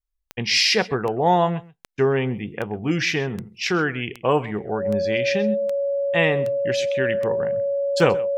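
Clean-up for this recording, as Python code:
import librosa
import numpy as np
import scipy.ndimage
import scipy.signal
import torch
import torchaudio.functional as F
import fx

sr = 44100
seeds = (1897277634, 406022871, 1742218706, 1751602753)

y = fx.fix_declick_ar(x, sr, threshold=10.0)
y = fx.notch(y, sr, hz=560.0, q=30.0)
y = fx.fix_echo_inverse(y, sr, delay_ms=130, level_db=-20.0)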